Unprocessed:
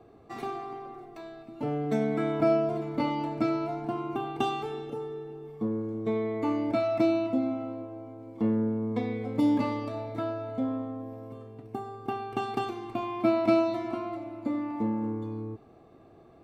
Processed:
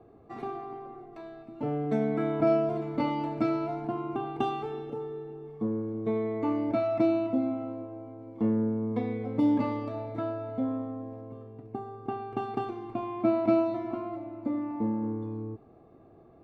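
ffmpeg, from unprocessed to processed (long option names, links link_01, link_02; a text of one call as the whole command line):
ffmpeg -i in.wav -af "asetnsamples=nb_out_samples=441:pad=0,asendcmd='1.13 lowpass f 1900;2.47 lowpass f 3400;3.87 lowpass f 1800;11.21 lowpass f 1100',lowpass=frequency=1200:poles=1" out.wav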